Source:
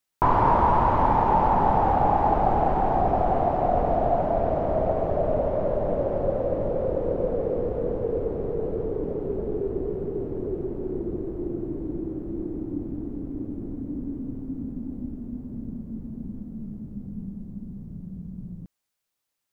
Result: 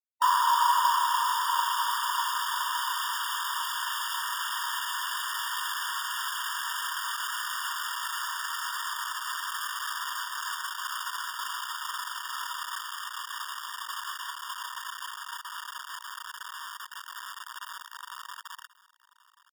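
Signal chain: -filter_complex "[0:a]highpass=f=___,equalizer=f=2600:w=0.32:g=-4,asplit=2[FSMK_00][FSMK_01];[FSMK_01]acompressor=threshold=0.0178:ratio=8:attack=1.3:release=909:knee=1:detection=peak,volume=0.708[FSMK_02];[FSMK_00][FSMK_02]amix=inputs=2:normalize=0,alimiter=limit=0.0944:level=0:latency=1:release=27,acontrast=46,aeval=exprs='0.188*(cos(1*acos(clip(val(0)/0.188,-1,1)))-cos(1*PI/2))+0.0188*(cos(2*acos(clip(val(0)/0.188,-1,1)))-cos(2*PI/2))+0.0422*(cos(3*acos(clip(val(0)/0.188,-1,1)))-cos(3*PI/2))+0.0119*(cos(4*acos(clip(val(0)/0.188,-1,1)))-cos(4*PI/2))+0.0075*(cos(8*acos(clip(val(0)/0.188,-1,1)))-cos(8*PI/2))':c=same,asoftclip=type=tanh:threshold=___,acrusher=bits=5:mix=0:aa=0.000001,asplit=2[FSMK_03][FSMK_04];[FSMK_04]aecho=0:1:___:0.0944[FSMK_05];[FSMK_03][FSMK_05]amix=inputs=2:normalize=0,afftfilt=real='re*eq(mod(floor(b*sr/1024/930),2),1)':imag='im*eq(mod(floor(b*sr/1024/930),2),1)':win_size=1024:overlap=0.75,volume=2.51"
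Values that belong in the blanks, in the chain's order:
230, 0.106, 1084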